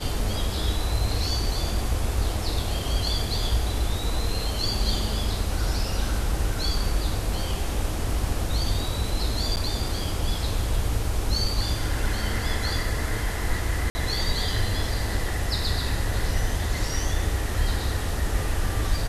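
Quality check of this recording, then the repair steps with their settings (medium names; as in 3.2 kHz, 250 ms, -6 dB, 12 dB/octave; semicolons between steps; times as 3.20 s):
9.56–9.57 s: dropout 9.4 ms
13.90–13.95 s: dropout 50 ms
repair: interpolate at 9.56 s, 9.4 ms; interpolate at 13.90 s, 50 ms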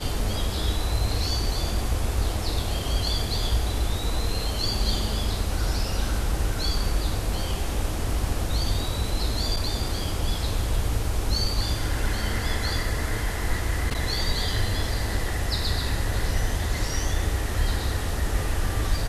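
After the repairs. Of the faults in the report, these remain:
nothing left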